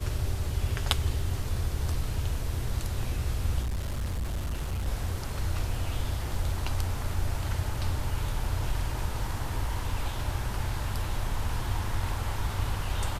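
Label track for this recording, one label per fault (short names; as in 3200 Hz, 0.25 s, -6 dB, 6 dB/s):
3.620000	4.880000	clipped -27.5 dBFS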